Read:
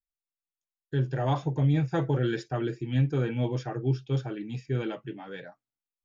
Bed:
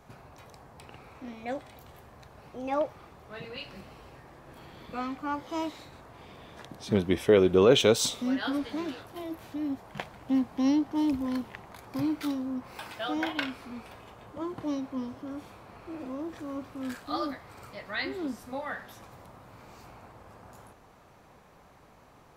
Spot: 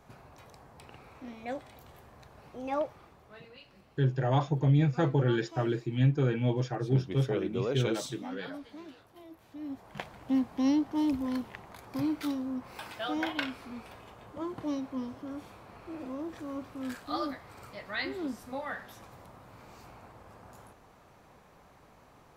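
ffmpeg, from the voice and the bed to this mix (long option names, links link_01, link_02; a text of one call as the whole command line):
ffmpeg -i stem1.wav -i stem2.wav -filter_complex "[0:a]adelay=3050,volume=0dB[link_01];[1:a]volume=9dB,afade=type=out:start_time=2.75:duration=0.85:silence=0.298538,afade=type=in:start_time=9.45:duration=0.65:silence=0.266073[link_02];[link_01][link_02]amix=inputs=2:normalize=0" out.wav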